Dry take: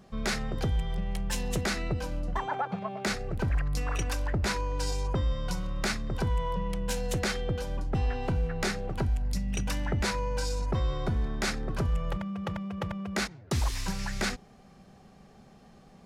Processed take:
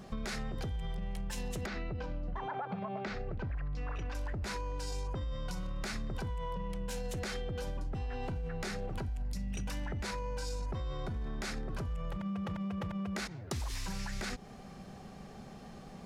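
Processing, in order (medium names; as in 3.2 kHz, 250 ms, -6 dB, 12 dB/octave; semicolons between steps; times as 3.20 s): peak limiter -27.5 dBFS, peak gain reduction 8 dB; compression 6:1, threshold -40 dBFS, peak gain reduction 9.5 dB; 1.66–4.15 s: distance through air 200 m; trim +5.5 dB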